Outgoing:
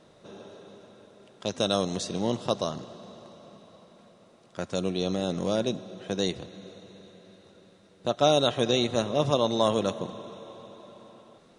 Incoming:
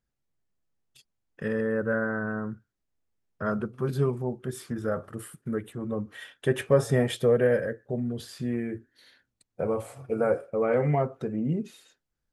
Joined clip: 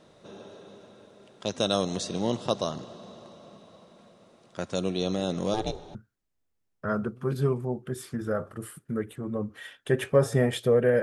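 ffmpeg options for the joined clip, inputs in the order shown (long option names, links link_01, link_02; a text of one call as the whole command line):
ffmpeg -i cue0.wav -i cue1.wav -filter_complex "[0:a]asettb=1/sr,asplit=3[link_01][link_02][link_03];[link_01]atrim=end=5.544[link_04];[link_02]atrim=start=5.54:end=5.95,asetpts=PTS-STARTPTS,afade=type=in:duration=0.004:curve=qsin,afade=type=out:start_time=0.406:duration=0.004:curve=qsin,aeval=exprs='val(0)*sin(2*PI*210*n/s)':channel_layout=same[link_05];[link_03]atrim=start=5.946[link_06];[link_04][link_05]acrossfade=duration=0.004:curve1=hsin:curve2=qsin[link_07];[link_07][link_06]acrossfade=duration=0.004:curve1=qsin:curve2=hsin,apad=whole_dur=11.02,atrim=end=11.02,atrim=end=5.952[link_08];[1:a]atrim=start=2.518:end=7.59[link_09];[link_08][link_09]acrossfade=duration=0.004:curve1=hsin:curve2=hsin" out.wav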